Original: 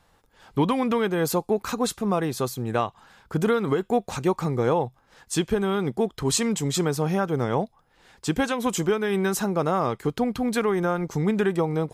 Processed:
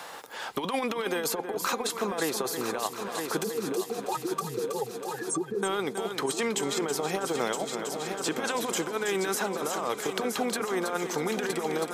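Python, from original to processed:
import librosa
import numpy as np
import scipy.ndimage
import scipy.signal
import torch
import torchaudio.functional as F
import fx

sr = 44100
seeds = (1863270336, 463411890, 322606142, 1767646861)

y = fx.spec_expand(x, sr, power=3.7, at=(3.44, 5.63))
y = scipy.signal.sosfilt(scipy.signal.butter(2, 440.0, 'highpass', fs=sr, output='sos'), y)
y = fx.over_compress(y, sr, threshold_db=-29.0, ratio=-0.5)
y = fx.echo_heads(y, sr, ms=322, heads='first and third', feedback_pct=57, wet_db=-11)
y = fx.band_squash(y, sr, depth_pct=70)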